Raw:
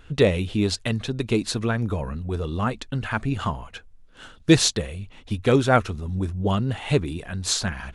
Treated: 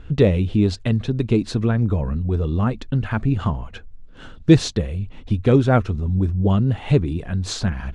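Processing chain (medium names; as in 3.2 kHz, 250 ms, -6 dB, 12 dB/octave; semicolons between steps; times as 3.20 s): bass shelf 480 Hz +11 dB; in parallel at -2 dB: compression, threshold -25 dBFS, peak gain reduction 21.5 dB; on the sum: distance through air 62 m; trim -5 dB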